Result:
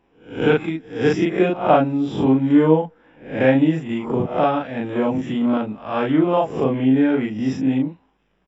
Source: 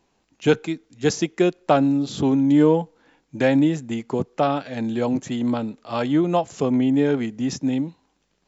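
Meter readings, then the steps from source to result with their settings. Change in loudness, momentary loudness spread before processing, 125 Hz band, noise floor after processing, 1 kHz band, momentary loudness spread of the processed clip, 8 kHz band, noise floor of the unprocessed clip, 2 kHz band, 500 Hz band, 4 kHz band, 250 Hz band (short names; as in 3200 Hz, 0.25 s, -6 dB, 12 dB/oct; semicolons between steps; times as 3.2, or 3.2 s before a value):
+2.5 dB, 9 LU, +2.0 dB, -63 dBFS, +4.0 dB, 9 LU, n/a, -69 dBFS, +4.0 dB, +3.0 dB, -1.5 dB, +2.0 dB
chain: spectral swells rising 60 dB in 0.44 s; polynomial smoothing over 25 samples; doubler 38 ms -2 dB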